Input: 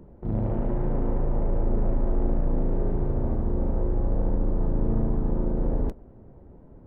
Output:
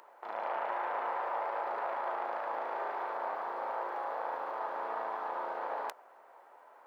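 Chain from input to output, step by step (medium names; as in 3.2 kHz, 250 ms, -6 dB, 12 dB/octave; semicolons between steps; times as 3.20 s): high-pass 880 Hz 24 dB/octave; in parallel at -3 dB: peak limiter -40 dBFS, peak gain reduction 10 dB; on the sum: trim +8 dB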